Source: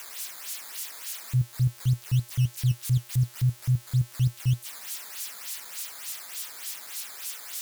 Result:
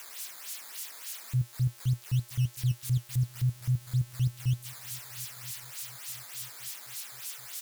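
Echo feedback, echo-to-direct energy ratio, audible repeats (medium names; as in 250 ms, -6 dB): 50%, -22.0 dB, 2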